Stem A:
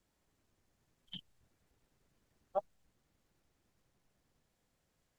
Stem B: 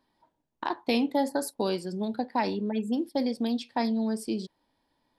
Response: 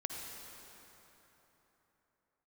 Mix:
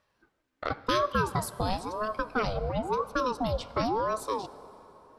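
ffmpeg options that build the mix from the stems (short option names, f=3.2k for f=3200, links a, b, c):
-filter_complex "[0:a]bandpass=f=1.9k:t=q:w=0.82:csg=0,volume=-2.5dB,asplit=2[a][b];[b]volume=-3dB[c];[1:a]aeval=exprs='val(0)*sin(2*PI*560*n/s+560*0.55/0.96*sin(2*PI*0.96*n/s))':c=same,volume=0.5dB,asplit=2[d][e];[e]volume=-12.5dB[f];[2:a]atrim=start_sample=2205[g];[c][f]amix=inputs=2:normalize=0[h];[h][g]afir=irnorm=-1:irlink=0[i];[a][d][i]amix=inputs=3:normalize=0"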